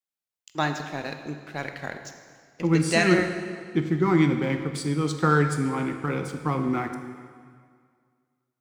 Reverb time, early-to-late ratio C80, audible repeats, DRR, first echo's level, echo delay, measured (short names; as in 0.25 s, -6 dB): 2.0 s, 8.5 dB, none, 6.0 dB, none, none